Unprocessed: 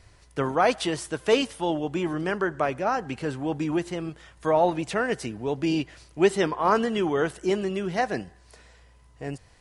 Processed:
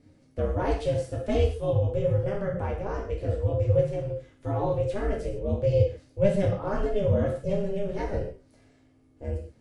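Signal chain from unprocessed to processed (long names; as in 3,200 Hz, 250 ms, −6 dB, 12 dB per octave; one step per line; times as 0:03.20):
drawn EQ curve 150 Hz 0 dB, 270 Hz +12 dB, 430 Hz −1 dB, 710 Hz −10 dB
ring modulation 200 Hz
reverb whose tail is shaped and stops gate 180 ms falling, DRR −2.5 dB
level −4 dB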